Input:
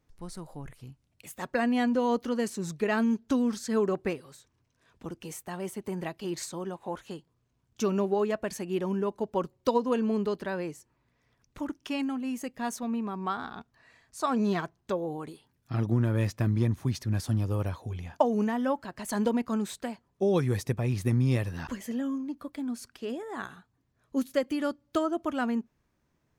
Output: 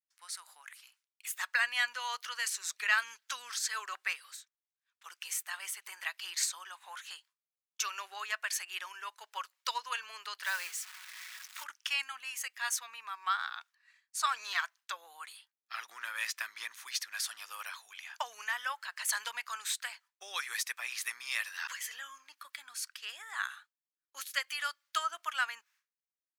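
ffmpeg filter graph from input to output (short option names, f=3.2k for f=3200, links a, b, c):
-filter_complex "[0:a]asettb=1/sr,asplit=3[a][b][c];[a]atrim=end=10.434[d];[b]atrim=start=10.43:end=11.64,asetpts=PTS-STARTPTS,afade=t=in:d=0.004:c=qsin,afade=t=out:st=1.206:d=0.004:c=qsin,aeval=exprs='val(0)+0.5*0.00596*sgn(val(0))':c=same,aecho=1:1:5.4:0.3,atrim=end_sample=53361,acrusher=bits=5:mode=log:mix=0:aa=0.000001[e];[c]atrim=start=11.636[f];[d][e]acrossfade=d=0.004:c1=hsin:c2=qsin[g];[g][f]acrossfade=d=0.004:c1=qsin:c2=hsin,agate=range=-33dB:threshold=-50dB:ratio=3:detection=peak,highpass=f=1.4k:w=0.5412,highpass=f=1.4k:w=1.3066,volume=7dB"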